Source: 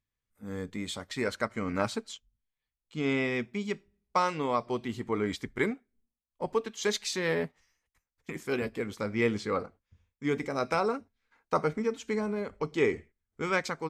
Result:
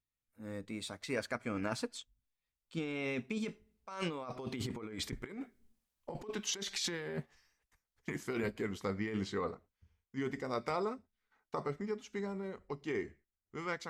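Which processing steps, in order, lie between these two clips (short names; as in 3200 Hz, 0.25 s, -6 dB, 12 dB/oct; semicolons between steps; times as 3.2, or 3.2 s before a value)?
Doppler pass-by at 5.33, 24 m/s, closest 22 m; negative-ratio compressor -42 dBFS, ratio -1; gain +4 dB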